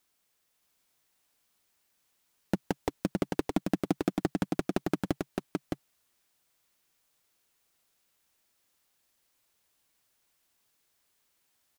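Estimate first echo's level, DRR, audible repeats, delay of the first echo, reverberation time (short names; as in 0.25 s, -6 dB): -3.5 dB, none, 1, 0.615 s, none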